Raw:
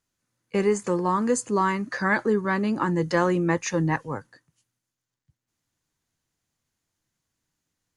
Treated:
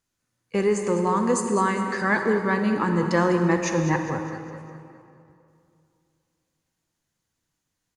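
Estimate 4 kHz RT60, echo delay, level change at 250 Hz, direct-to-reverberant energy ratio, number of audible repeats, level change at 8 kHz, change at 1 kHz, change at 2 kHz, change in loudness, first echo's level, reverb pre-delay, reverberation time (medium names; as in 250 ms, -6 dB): 1.9 s, 203 ms, +1.5 dB, 4.5 dB, 4, +1.0 dB, +1.5 dB, +1.5 dB, +1.0 dB, -13.0 dB, 37 ms, 2.6 s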